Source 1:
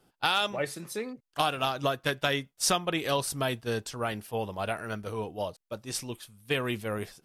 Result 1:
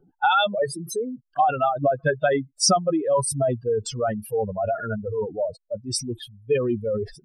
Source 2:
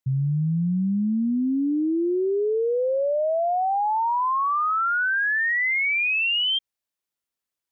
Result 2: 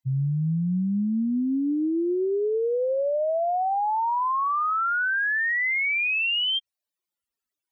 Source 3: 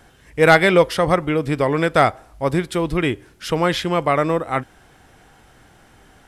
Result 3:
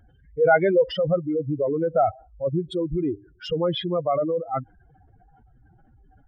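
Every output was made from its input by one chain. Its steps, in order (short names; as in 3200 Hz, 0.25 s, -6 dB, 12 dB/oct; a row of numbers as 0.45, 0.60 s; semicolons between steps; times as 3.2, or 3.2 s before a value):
spectral contrast raised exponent 3.5; match loudness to -24 LUFS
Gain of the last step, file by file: +8.5, -1.0, -4.0 dB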